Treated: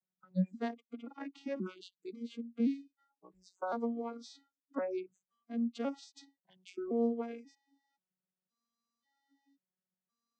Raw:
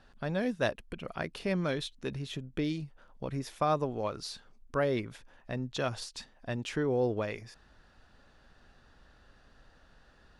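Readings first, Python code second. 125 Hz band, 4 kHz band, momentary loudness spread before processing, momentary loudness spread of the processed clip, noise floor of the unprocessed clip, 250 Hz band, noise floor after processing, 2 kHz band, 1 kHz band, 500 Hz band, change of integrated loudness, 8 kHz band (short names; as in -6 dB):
n/a, -14.5 dB, 13 LU, 15 LU, -62 dBFS, -0.5 dB, under -85 dBFS, -13.0 dB, -8.0 dB, -6.5 dB, -4.0 dB, under -10 dB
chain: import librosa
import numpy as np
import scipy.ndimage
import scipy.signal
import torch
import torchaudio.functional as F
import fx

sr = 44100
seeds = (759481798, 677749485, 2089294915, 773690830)

y = fx.vocoder_arp(x, sr, chord='major triad', root=54, every_ms=531)
y = fx.noise_reduce_blind(y, sr, reduce_db=30)
y = fx.bass_treble(y, sr, bass_db=6, treble_db=5)
y = F.gain(torch.from_numpy(y), -4.5).numpy()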